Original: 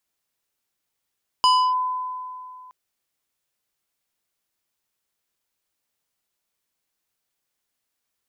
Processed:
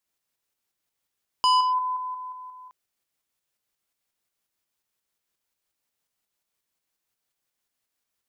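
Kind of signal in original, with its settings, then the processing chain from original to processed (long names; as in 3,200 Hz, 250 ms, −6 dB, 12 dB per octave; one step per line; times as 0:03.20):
two-operator FM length 1.27 s, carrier 1,010 Hz, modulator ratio 3.94, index 0.75, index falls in 0.30 s linear, decay 2.51 s, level −12 dB
shaped tremolo saw up 5.6 Hz, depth 40%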